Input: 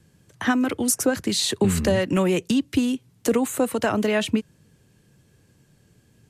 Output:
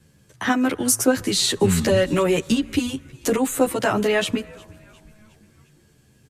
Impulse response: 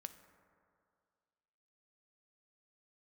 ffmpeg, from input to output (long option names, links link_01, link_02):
-filter_complex "[0:a]asplit=5[link_01][link_02][link_03][link_04][link_05];[link_02]adelay=357,afreqshift=-140,volume=-23.5dB[link_06];[link_03]adelay=714,afreqshift=-280,volume=-28.9dB[link_07];[link_04]adelay=1071,afreqshift=-420,volume=-34.2dB[link_08];[link_05]adelay=1428,afreqshift=-560,volume=-39.6dB[link_09];[link_01][link_06][link_07][link_08][link_09]amix=inputs=5:normalize=0,asplit=2[link_10][link_11];[1:a]atrim=start_sample=2205,lowshelf=frequency=460:gain=-10.5[link_12];[link_11][link_12]afir=irnorm=-1:irlink=0,volume=-3.5dB[link_13];[link_10][link_13]amix=inputs=2:normalize=0,asplit=2[link_14][link_15];[link_15]adelay=11,afreqshift=-0.34[link_16];[link_14][link_16]amix=inputs=2:normalize=1,volume=3.5dB"